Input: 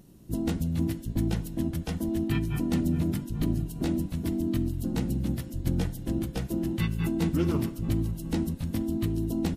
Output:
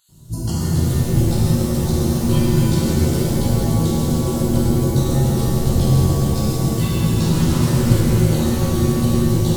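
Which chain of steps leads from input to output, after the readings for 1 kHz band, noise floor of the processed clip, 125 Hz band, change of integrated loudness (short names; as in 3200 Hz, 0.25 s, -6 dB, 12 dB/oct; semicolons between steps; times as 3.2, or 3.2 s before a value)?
+15.5 dB, -22 dBFS, +14.0 dB, +12.0 dB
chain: random spectral dropouts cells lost 26%; ten-band EQ 125 Hz +12 dB, 250 Hz -9 dB, 500 Hz -6 dB, 1000 Hz +8 dB, 2000 Hz -11 dB, 4000 Hz +9 dB, 8000 Hz +9 dB; shimmer reverb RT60 3.2 s, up +7 st, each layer -2 dB, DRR -8.5 dB; gain -1 dB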